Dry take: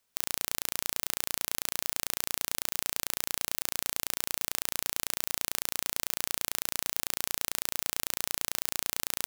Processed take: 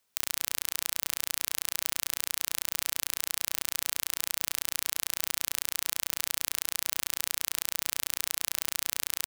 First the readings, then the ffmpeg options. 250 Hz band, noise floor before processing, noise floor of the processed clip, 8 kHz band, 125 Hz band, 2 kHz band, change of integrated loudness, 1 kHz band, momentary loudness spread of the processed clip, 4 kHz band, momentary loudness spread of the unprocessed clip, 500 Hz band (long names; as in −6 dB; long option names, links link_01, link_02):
−9.0 dB, −77 dBFS, −70 dBFS, +1.5 dB, below −10 dB, +1.0 dB, +1.5 dB, −3.0 dB, 0 LU, +1.5 dB, 0 LU, −7.5 dB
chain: -filter_complex "[0:a]lowshelf=frequency=86:gain=-6.5,asplit=2[link_01][link_02];[link_02]adelay=63,lowpass=frequency=3800:poles=1,volume=-16dB,asplit=2[link_03][link_04];[link_04]adelay=63,lowpass=frequency=3800:poles=1,volume=0.28,asplit=2[link_05][link_06];[link_06]adelay=63,lowpass=frequency=3800:poles=1,volume=0.28[link_07];[link_01][link_03][link_05][link_07]amix=inputs=4:normalize=0,acrossover=split=1100[link_08][link_09];[link_08]alimiter=level_in=16.5dB:limit=-24dB:level=0:latency=1:release=15,volume=-16.5dB[link_10];[link_10][link_09]amix=inputs=2:normalize=0,volume=1.5dB"